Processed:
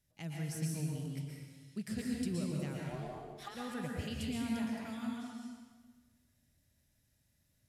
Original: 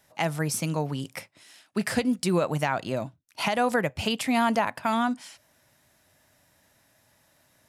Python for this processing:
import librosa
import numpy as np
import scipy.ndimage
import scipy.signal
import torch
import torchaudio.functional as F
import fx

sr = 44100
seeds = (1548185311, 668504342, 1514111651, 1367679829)

y = fx.tone_stack(x, sr, knobs='10-0-1')
y = fx.ring_mod(y, sr, carrier_hz=fx.line((2.8, 410.0), (3.54, 1100.0)), at=(2.8, 3.54), fade=0.02)
y = fx.rev_plate(y, sr, seeds[0], rt60_s=1.5, hf_ratio=0.8, predelay_ms=105, drr_db=-2.5)
y = y * librosa.db_to_amplitude(4.0)